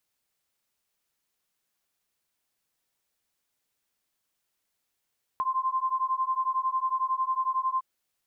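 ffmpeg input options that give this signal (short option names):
-f lavfi -i "aevalsrc='0.0398*(sin(2*PI*1040*t)+sin(2*PI*1051*t))':d=2.41:s=44100"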